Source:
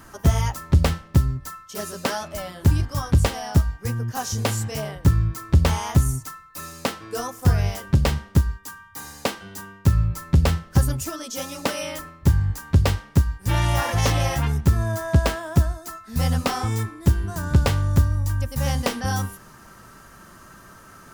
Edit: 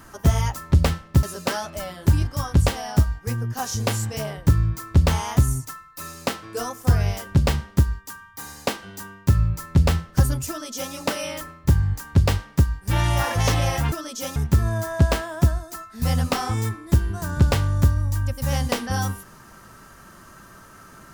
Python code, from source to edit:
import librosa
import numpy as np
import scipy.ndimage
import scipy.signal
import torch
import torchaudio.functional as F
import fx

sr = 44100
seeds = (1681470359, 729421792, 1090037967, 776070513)

y = fx.edit(x, sr, fx.cut(start_s=1.23, length_s=0.58),
    fx.duplicate(start_s=11.07, length_s=0.44, to_s=14.5), tone=tone)